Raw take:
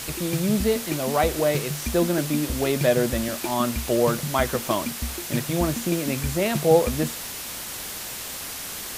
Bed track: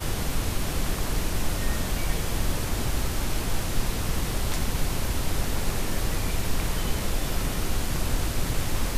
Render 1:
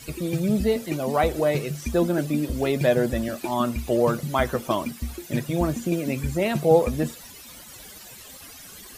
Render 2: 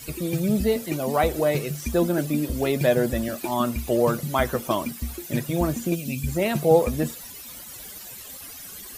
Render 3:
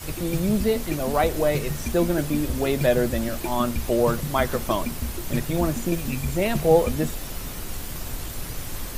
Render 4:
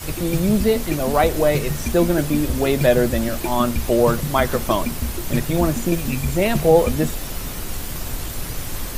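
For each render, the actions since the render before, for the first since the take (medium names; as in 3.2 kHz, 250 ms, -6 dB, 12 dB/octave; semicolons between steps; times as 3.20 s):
noise reduction 15 dB, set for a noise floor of -34 dBFS
5.95–6.28 s: time-frequency box 270–2300 Hz -13 dB; treble shelf 11 kHz +10 dB
add bed track -7 dB
trim +4.5 dB; peak limiter -3 dBFS, peak gain reduction 2.5 dB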